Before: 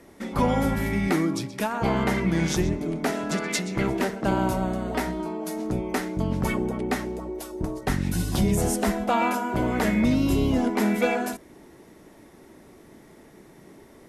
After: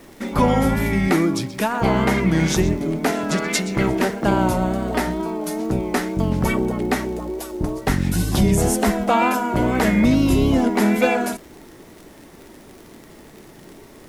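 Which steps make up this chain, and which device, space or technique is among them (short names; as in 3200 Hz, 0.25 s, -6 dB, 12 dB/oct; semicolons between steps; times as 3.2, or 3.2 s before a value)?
vinyl LP (wow and flutter; crackle 65/s -39 dBFS; pink noise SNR 32 dB); gain +5.5 dB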